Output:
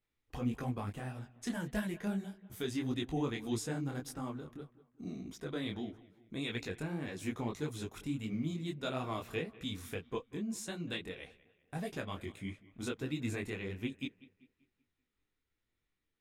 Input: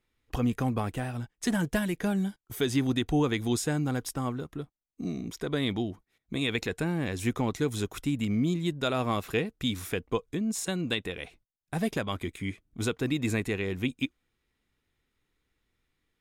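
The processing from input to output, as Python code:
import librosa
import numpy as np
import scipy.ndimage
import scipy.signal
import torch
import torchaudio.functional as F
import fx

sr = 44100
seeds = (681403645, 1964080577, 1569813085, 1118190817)

p1 = fx.high_shelf(x, sr, hz=12000.0, db=-3.5)
p2 = p1 + fx.echo_bbd(p1, sr, ms=193, stages=4096, feedback_pct=42, wet_db=-19.5, dry=0)
p3 = fx.detune_double(p2, sr, cents=58)
y = p3 * librosa.db_to_amplitude(-5.5)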